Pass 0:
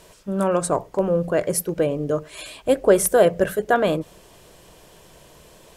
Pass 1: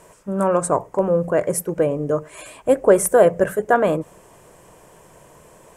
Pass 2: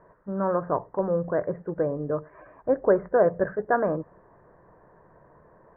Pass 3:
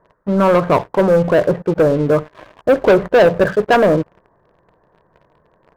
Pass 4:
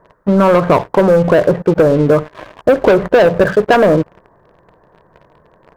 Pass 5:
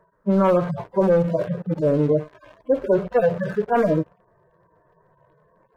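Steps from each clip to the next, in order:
graphic EQ 125/250/500/1000/2000/4000/8000 Hz +6/+4/+5/+8/+5/-9/+8 dB; gain -5 dB
Chebyshev low-pass 1800 Hz, order 5; gain -6 dB
sample leveller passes 3; gain +4 dB
compressor, threshold -14 dBFS, peak gain reduction 6.5 dB; gain +7 dB
median-filter separation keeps harmonic; gain -7 dB

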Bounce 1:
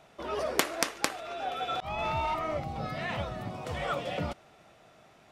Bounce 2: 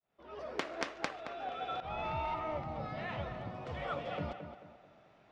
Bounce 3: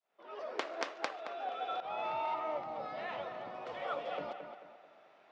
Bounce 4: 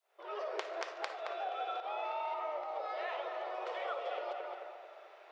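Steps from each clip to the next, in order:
opening faded in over 0.84 s; air absorption 160 m; tape echo 0.221 s, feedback 42%, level -7 dB, low-pass 2100 Hz; gain -5.5 dB
dynamic EQ 2000 Hz, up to -4 dB, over -50 dBFS, Q 0.93; HPF 440 Hz 12 dB/oct; air absorption 65 m; gain +3 dB
compressor 4:1, threshold -43 dBFS, peak gain reduction 11.5 dB; brick-wall FIR high-pass 330 Hz; reverb RT60 0.75 s, pre-delay 15 ms, DRR 9.5 dB; gain +6 dB

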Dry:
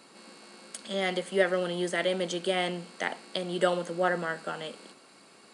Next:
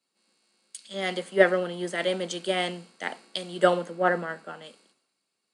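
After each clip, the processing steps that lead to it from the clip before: three-band expander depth 100%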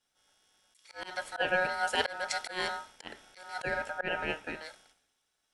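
ring modulator 1100 Hz; auto swell 0.282 s; gain +3.5 dB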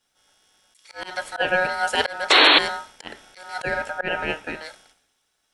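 painted sound noise, 2.3–2.59, 260–4400 Hz -21 dBFS; gain +7.5 dB

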